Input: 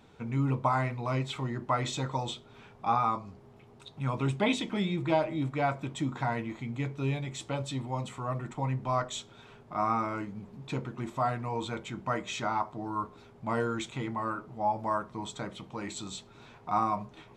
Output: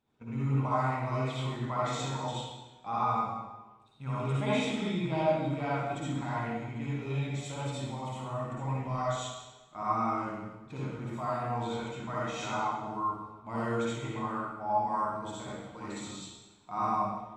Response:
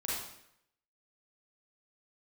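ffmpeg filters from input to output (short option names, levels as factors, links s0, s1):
-filter_complex "[0:a]agate=range=0.2:threshold=0.00891:ratio=16:detection=peak[s0];[1:a]atrim=start_sample=2205,asetrate=29106,aresample=44100[s1];[s0][s1]afir=irnorm=-1:irlink=0,volume=0.376"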